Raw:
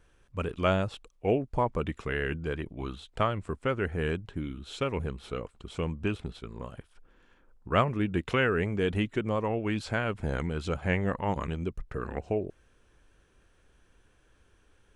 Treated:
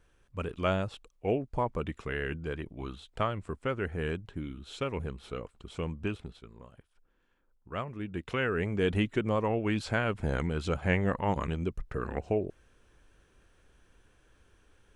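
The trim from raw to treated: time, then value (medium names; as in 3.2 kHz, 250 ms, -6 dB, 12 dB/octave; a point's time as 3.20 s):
6.06 s -3 dB
6.65 s -11.5 dB
7.80 s -11.5 dB
8.87 s +0.5 dB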